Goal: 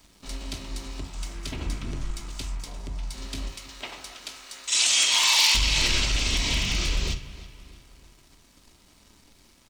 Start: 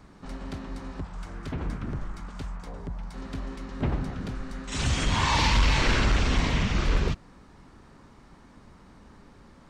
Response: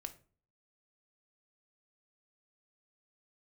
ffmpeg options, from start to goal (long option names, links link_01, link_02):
-filter_complex "[0:a]asettb=1/sr,asplit=3[link_01][link_02][link_03];[link_01]atrim=end=3.484[link_04];[link_02]atrim=start=3.48:end=5.55,asetpts=PTS-STARTPTS,afade=type=in:duration=0.004:curve=qsin,afade=type=out:start_time=2.066:duration=0.004:curve=qsin,highpass=700[link_05];[link_03]atrim=start=5.546[link_06];[link_04][link_05]acrossfade=duration=0.004:curve1=hsin:curve2=qsin[link_07];[link_07][link_06]acrossfade=duration=0.004:curve1=qsin:curve2=hsin,acompressor=threshold=-24dB:ratio=10,aeval=exprs='0.0891*(abs(mod(val(0)/0.0891+3,4)-2)-1)':channel_layout=same,aexciter=amount=5.9:drive=4.3:freq=2300,aeval=exprs='sgn(val(0))*max(abs(val(0))-0.00282,0)':channel_layout=same,asplit=2[link_08][link_09];[link_09]adelay=319,lowpass=frequency=4200:poles=1,volume=-16dB,asplit=2[link_10][link_11];[link_11]adelay=319,lowpass=frequency=4200:poles=1,volume=0.49,asplit=2[link_12][link_13];[link_13]adelay=319,lowpass=frequency=4200:poles=1,volume=0.49,asplit=2[link_14][link_15];[link_15]adelay=319,lowpass=frequency=4200:poles=1,volume=0.49[link_16];[link_08][link_10][link_12][link_14][link_16]amix=inputs=5:normalize=0[link_17];[1:a]atrim=start_sample=2205[link_18];[link_17][link_18]afir=irnorm=-1:irlink=0,volume=2dB"